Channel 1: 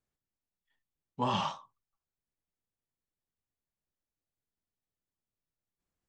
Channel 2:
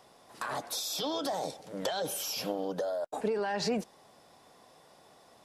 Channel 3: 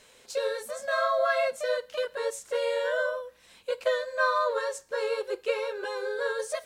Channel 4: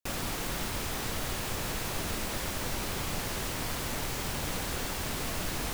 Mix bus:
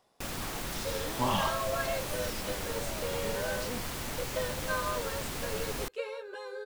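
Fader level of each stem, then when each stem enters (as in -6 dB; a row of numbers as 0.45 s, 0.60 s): +1.0 dB, -11.0 dB, -8.5 dB, -3.0 dB; 0.00 s, 0.00 s, 0.50 s, 0.15 s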